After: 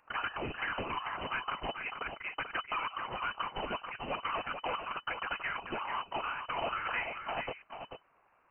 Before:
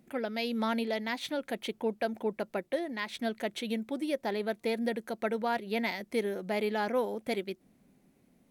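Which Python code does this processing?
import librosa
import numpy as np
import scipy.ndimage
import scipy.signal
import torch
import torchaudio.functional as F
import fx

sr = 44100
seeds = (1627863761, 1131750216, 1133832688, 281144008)

p1 = scipy.signal.sosfilt(scipy.signal.butter(2, 1200.0, 'highpass', fs=sr, output='sos'), x)
p2 = fx.peak_eq(p1, sr, hz=1800.0, db=11.5, octaves=0.96)
p3 = fx.over_compress(p2, sr, threshold_db=-35.0, ratio=-1.0)
p4 = fx.whisperise(p3, sr, seeds[0])
p5 = fx.tube_stage(p4, sr, drive_db=33.0, bias=0.6)
p6 = p5 + fx.echo_single(p5, sr, ms=438, db=-7.5, dry=0)
p7 = fx.freq_invert(p6, sr, carrier_hz=3000)
y = p7 * librosa.db_to_amplitude(4.5)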